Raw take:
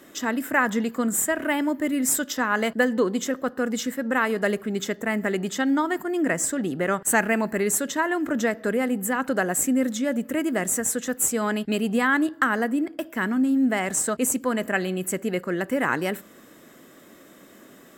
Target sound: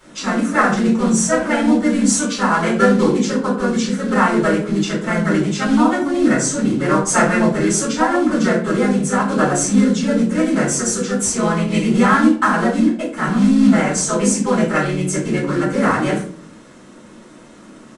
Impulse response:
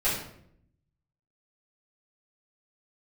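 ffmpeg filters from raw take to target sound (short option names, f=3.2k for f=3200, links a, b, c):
-filter_complex "[0:a]acrusher=bits=4:mode=log:mix=0:aa=0.000001,asplit=2[a][b];[b]asetrate=35002,aresample=44100,atempo=1.25992,volume=-1dB[c];[a][c]amix=inputs=2:normalize=0,aresample=22050,aresample=44100[d];[1:a]atrim=start_sample=2205,asetrate=74970,aresample=44100[e];[d][e]afir=irnorm=-1:irlink=0,volume=-2.5dB"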